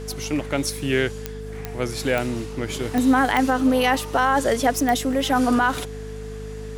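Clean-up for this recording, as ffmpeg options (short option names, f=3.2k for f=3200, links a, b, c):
-af "adeclick=t=4,bandreject=f=51.1:t=h:w=4,bandreject=f=102.2:t=h:w=4,bandreject=f=153.3:t=h:w=4,bandreject=f=204.4:t=h:w=4,bandreject=f=255.5:t=h:w=4,bandreject=f=440:w=30"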